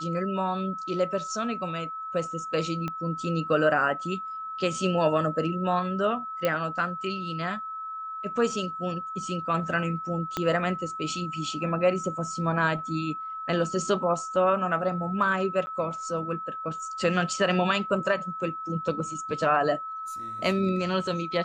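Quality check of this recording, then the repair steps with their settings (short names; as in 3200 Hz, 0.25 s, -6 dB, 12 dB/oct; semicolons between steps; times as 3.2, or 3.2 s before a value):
tone 1300 Hz -33 dBFS
2.88 pop -19 dBFS
6.45 pop -12 dBFS
10.37 pop -13 dBFS
15.66–15.67 gap 10 ms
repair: de-click; notch 1300 Hz, Q 30; interpolate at 15.66, 10 ms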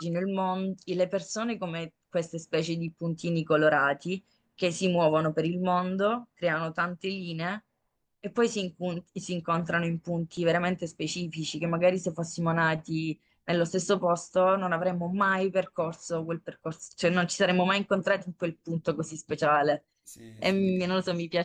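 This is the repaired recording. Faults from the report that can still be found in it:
2.88 pop
10.37 pop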